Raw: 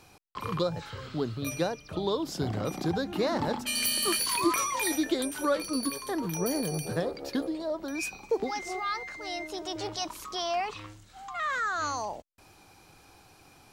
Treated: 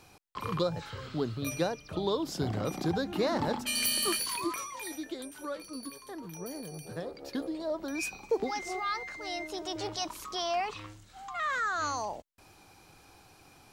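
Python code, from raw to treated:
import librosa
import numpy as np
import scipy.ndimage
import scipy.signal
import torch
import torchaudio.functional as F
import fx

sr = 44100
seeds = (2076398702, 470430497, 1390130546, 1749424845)

y = fx.gain(x, sr, db=fx.line((4.01, -1.0), (4.71, -11.0), (6.75, -11.0), (7.71, -1.0)))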